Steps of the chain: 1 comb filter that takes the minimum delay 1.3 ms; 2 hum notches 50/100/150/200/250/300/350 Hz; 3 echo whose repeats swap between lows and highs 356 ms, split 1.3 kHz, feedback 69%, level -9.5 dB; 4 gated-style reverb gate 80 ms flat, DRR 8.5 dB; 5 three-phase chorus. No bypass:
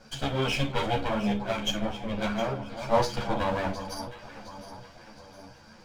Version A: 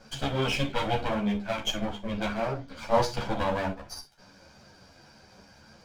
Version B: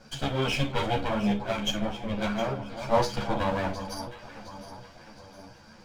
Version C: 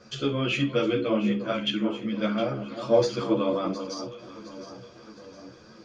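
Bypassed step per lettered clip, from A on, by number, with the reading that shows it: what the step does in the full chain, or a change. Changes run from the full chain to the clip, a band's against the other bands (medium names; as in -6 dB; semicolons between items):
3, momentary loudness spread change -12 LU; 2, momentary loudness spread change -1 LU; 1, 250 Hz band +5.5 dB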